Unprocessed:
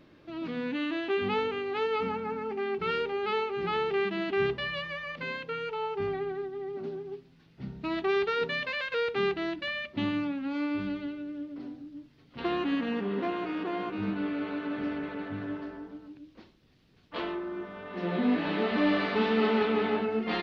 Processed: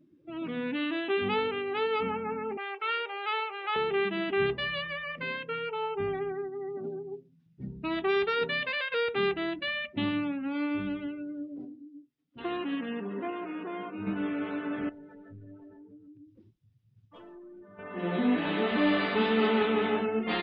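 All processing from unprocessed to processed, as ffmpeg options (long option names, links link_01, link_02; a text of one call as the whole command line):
ffmpeg -i in.wav -filter_complex "[0:a]asettb=1/sr,asplit=3[link_01][link_02][link_03];[link_01]atrim=end=2.574[link_04];[link_02]atrim=start=2.57:end=3.76,asetpts=PTS-STARTPTS,afade=type=in:duration=0.004:curve=qsin,afade=type=out:start_time=1.186:duration=0.004:curve=qsin,acrossover=split=3800[link_05][link_06];[link_06]acompressor=threshold=-59dB:ratio=4:attack=1:release=60[link_07];[link_05][link_07]amix=inputs=2:normalize=0,highpass=frequency=560:width=0.5412,highpass=frequency=560:width=1.3066,highshelf=frequency=4100:gain=6.5[link_08];[link_03]atrim=start=3.756[link_09];[link_04][link_08]acrossfade=duration=0.004:curve1=hsin:curve2=qsin[link_10];[link_10][link_09]acrossfade=duration=0.004:curve1=qsin:curve2=hsin,asettb=1/sr,asplit=3[link_11][link_12][link_13];[link_11]atrim=end=11.654[link_14];[link_12]atrim=start=11.65:end=14.07,asetpts=PTS-STARTPTS,afade=type=in:duration=0.004:curve=qsin,afade=type=out:start_time=2.416:duration=0.004:curve=qsin,highpass=frequency=80:poles=1,flanger=delay=2.7:depth=2.2:regen=-61:speed=1.2:shape=sinusoidal[link_15];[link_13]atrim=start=14.066[link_16];[link_14][link_15]acrossfade=duration=0.004:curve1=hsin:curve2=qsin[link_17];[link_17][link_16]acrossfade=duration=0.004:curve1=qsin:curve2=hsin,asettb=1/sr,asplit=3[link_18][link_19][link_20];[link_18]atrim=end=14.894[link_21];[link_19]atrim=start=14.89:end=17.79,asetpts=PTS-STARTPTS,afade=type=in:duration=0.004:curve=qsin,afade=type=out:start_time=2.896:duration=0.004:curve=qsin,equalizer=frequency=110:width_type=o:width=0.31:gain=14,acompressor=threshold=-50dB:ratio=2.5:attack=3.2:release=140:knee=1:detection=peak,aeval=exprs='clip(val(0),-1,0.00422)':channel_layout=same[link_22];[link_20]atrim=start=17.786[link_23];[link_21][link_22]acrossfade=duration=0.004:curve1=hsin:curve2=qsin[link_24];[link_24][link_23]acrossfade=duration=0.004:curve1=qsin:curve2=hsin,afftdn=noise_reduction=24:noise_floor=-47,highshelf=frequency=4400:gain=8.5,bandreject=frequency=4300:width=8.1" out.wav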